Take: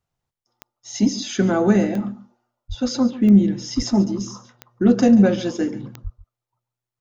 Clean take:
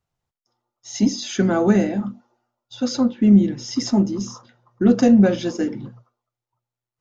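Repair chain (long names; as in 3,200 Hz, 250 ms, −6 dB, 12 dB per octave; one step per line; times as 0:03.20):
click removal
high-pass at the plosives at 0:02.68/0:03.76/0:06.03
echo removal 141 ms −16.5 dB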